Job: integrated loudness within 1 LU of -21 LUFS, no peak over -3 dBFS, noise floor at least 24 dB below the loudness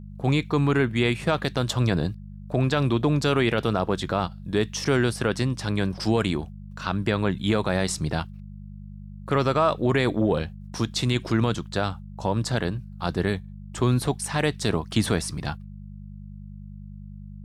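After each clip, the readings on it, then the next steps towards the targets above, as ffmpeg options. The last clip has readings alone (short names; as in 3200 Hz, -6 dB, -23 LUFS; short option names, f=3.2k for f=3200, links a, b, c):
hum 50 Hz; harmonics up to 200 Hz; hum level -38 dBFS; loudness -25.0 LUFS; peak -10.0 dBFS; loudness target -21.0 LUFS
-> -af "bandreject=f=50:t=h:w=4,bandreject=f=100:t=h:w=4,bandreject=f=150:t=h:w=4,bandreject=f=200:t=h:w=4"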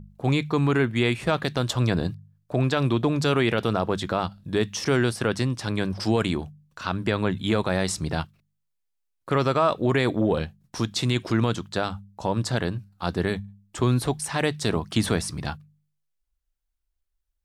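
hum none; loudness -25.5 LUFS; peak -9.5 dBFS; loudness target -21.0 LUFS
-> -af "volume=4.5dB"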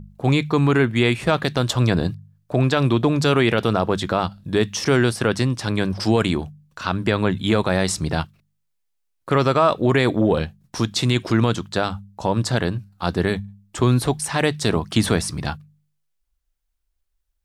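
loudness -21.0 LUFS; peak -5.0 dBFS; noise floor -72 dBFS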